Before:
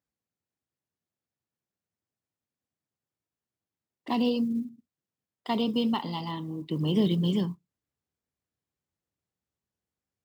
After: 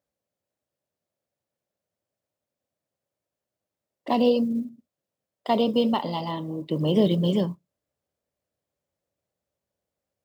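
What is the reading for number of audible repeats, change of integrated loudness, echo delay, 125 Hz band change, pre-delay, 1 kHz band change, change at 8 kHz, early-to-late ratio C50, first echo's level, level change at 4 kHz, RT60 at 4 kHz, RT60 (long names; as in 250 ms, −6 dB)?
no echo audible, +4.0 dB, no echo audible, +2.5 dB, no reverb audible, +6.0 dB, can't be measured, no reverb audible, no echo audible, +2.0 dB, no reverb audible, no reverb audible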